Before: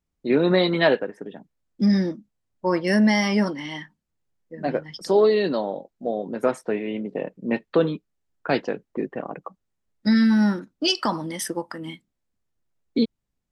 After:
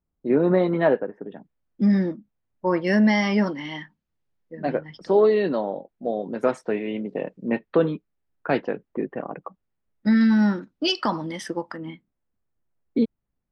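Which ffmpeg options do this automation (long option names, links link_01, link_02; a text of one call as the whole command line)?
ffmpeg -i in.wav -af "asetnsamples=nb_out_samples=441:pad=0,asendcmd='1.32 lowpass f 2600;2.82 lowpass f 4100;4.75 lowpass f 2600;6.05 lowpass f 6700;7.48 lowpass f 2600;10.21 lowpass f 4400;11.77 lowpass f 1900',lowpass=1300" out.wav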